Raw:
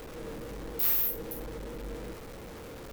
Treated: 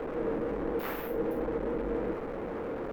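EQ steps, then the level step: three-band isolator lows -18 dB, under 220 Hz, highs -21 dB, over 2.3 kHz; tilt EQ -2 dB/octave; +8.5 dB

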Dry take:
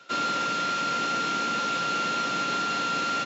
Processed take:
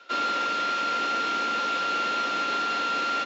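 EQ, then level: three-band isolator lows -18 dB, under 230 Hz, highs -15 dB, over 5.6 kHz; bass shelf 71 Hz -11 dB; +1.0 dB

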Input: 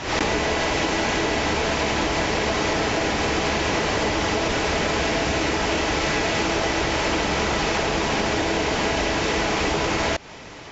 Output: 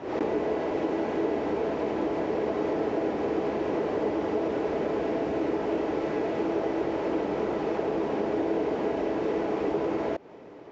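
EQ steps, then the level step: band-pass filter 390 Hz, Q 1.5; 0.0 dB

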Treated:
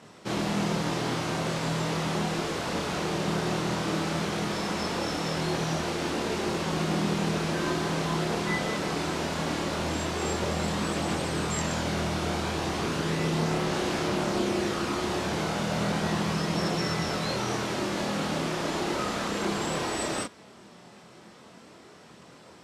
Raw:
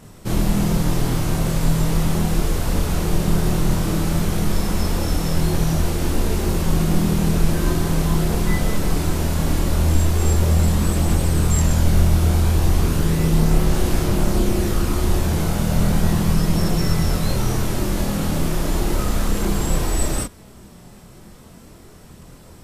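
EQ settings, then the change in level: band-pass 150–5200 Hz; bass shelf 300 Hz -10 dB; 0.0 dB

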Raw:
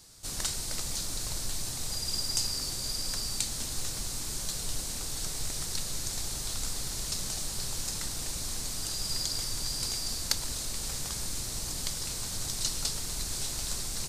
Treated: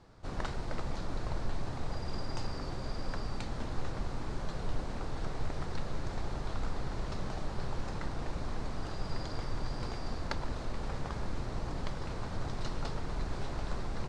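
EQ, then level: low-pass 1.2 kHz 12 dB/octave; bass shelf 410 Hz -4.5 dB; +7.5 dB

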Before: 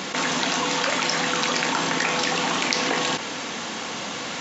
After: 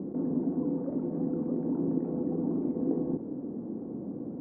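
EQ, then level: four-pole ladder low-pass 400 Hz, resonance 40%; distance through air 170 m; +6.5 dB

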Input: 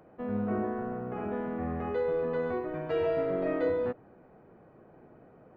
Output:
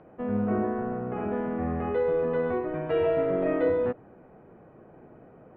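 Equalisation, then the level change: resonant low-pass 3.1 kHz, resonance Q 1.7; distance through air 53 m; treble shelf 2.3 kHz -9.5 dB; +4.5 dB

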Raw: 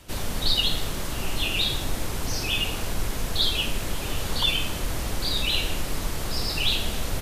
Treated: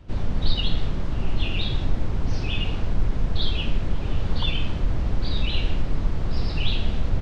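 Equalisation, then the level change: tone controls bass +7 dB, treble +8 dB; dynamic bell 3.3 kHz, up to +5 dB, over -33 dBFS, Q 0.78; tape spacing loss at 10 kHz 41 dB; 0.0 dB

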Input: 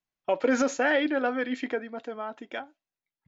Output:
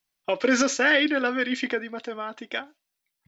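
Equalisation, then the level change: treble shelf 2.3 kHz +11 dB; dynamic bell 750 Hz, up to -8 dB, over -41 dBFS, Q 2; band-stop 6.8 kHz, Q 9.8; +3.0 dB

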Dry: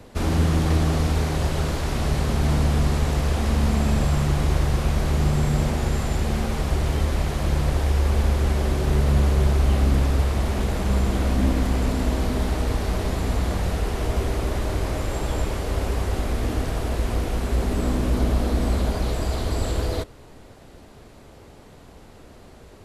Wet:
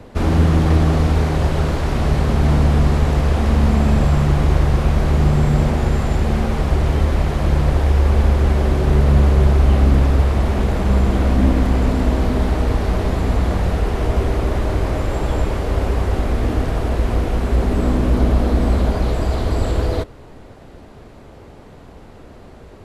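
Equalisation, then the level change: treble shelf 3.7 kHz -10.5 dB; +6.0 dB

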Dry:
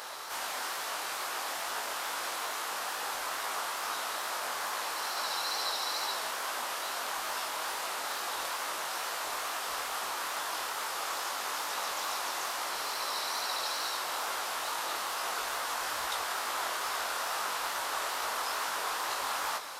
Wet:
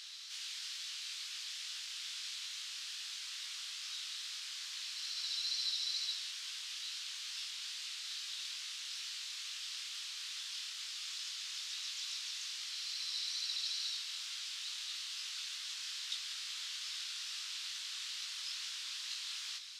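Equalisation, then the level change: ladder high-pass 2.6 kHz, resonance 25%; distance through air 140 m; treble shelf 5.2 kHz +11 dB; +3.5 dB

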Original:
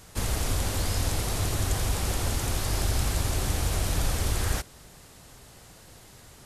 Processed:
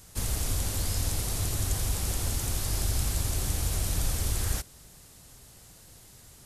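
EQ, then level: bass shelf 260 Hz +6.5 dB; treble shelf 4.3 kHz +11 dB; -8.0 dB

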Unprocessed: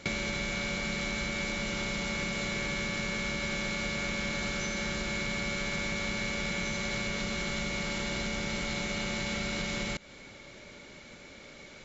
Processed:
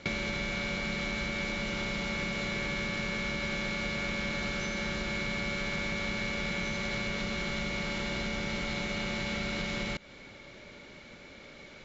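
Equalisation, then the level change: low-pass 5 kHz 12 dB/octave; 0.0 dB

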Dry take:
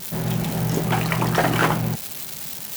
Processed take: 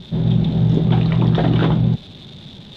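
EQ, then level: resonant low-pass 3.6 kHz, resonance Q 12; tilt shelf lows +8 dB, about 840 Hz; bass shelf 370 Hz +9.5 dB; -7.0 dB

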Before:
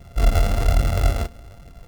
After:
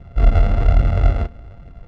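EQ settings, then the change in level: low-pass 2.5 kHz 12 dB/octave; bass shelf 280 Hz +4.5 dB; 0.0 dB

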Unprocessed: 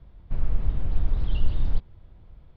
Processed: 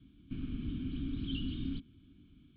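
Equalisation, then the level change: vowel filter i; distance through air 75 m; static phaser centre 2 kHz, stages 6; +16.0 dB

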